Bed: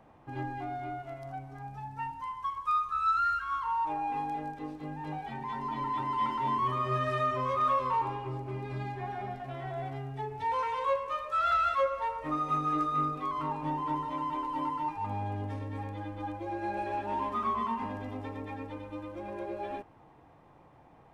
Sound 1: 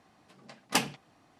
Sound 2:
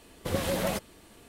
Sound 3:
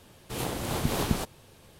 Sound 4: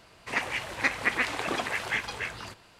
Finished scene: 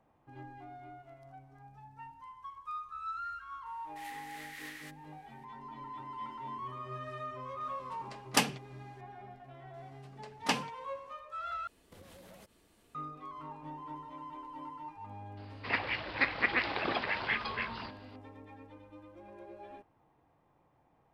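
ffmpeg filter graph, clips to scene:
-filter_complex "[1:a]asplit=2[s0][s1];[0:a]volume=0.251[s2];[3:a]highpass=f=1900:t=q:w=10[s3];[s1]acrossover=split=6400[s4][s5];[s5]acompressor=threshold=0.00708:ratio=4:attack=1:release=60[s6];[s4][s6]amix=inputs=2:normalize=0[s7];[2:a]acompressor=threshold=0.0112:ratio=6:attack=3.2:release=140:knee=1:detection=peak[s8];[4:a]aresample=11025,aresample=44100[s9];[s2]asplit=2[s10][s11];[s10]atrim=end=11.674[s12];[s8]atrim=end=1.28,asetpts=PTS-STARTPTS,volume=0.237[s13];[s11]atrim=start=12.946[s14];[s3]atrim=end=1.79,asetpts=PTS-STARTPTS,volume=0.126,afade=t=in:d=0.004:c=hsin,afade=t=out:st=1.786:d=0.004:c=hsin,adelay=3660[s15];[s0]atrim=end=1.39,asetpts=PTS-STARTPTS,afade=t=in:d=0.004:c=hsin,afade=t=out:st=1.386:d=0.004:c=hsin,adelay=336042S[s16];[s7]atrim=end=1.39,asetpts=PTS-STARTPTS,volume=0.708,afade=t=in:d=0.004:c=hsin,afade=t=out:st=1.386:d=0.004:c=hsin,adelay=9740[s17];[s9]atrim=end=2.79,asetpts=PTS-STARTPTS,volume=0.708,afade=t=in:d=0.004:c=hsin,afade=t=out:st=2.786:d=0.004:c=hsin,adelay=15370[s18];[s12][s13]acrossfade=d=0.004:c1=hsin:c2=hsin[s19];[s19][s14]acrossfade=d=0.004:c1=hsin:c2=hsin[s20];[s20][s15][s16][s17][s18]amix=inputs=5:normalize=0"

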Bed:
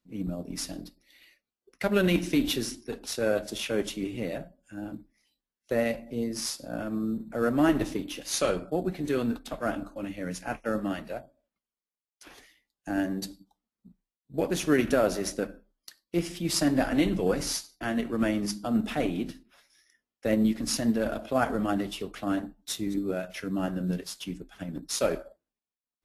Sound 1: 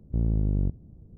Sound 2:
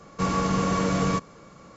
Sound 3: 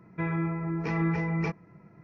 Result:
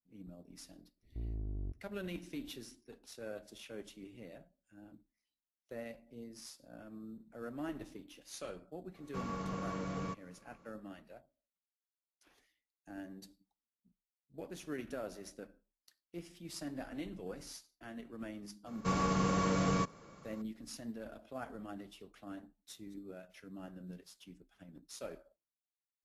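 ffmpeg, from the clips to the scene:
-filter_complex "[2:a]asplit=2[s0][s1];[0:a]volume=0.119[s2];[1:a]aecho=1:1:2.9:0.71[s3];[s0]highshelf=f=4500:g=-7.5[s4];[s3]atrim=end=1.17,asetpts=PTS-STARTPTS,volume=0.133,afade=t=in:d=0.02,afade=t=out:st=1.15:d=0.02,adelay=1020[s5];[s4]atrim=end=1.76,asetpts=PTS-STARTPTS,volume=0.168,afade=t=in:d=0.004:c=hsin,afade=t=out:st=1.756:d=0.004:c=hsin,adelay=8950[s6];[s1]atrim=end=1.76,asetpts=PTS-STARTPTS,volume=0.422,afade=t=in:d=0.004:c=hsin,afade=t=out:st=1.756:d=0.004:c=hsin,adelay=18660[s7];[s2][s5][s6][s7]amix=inputs=4:normalize=0"

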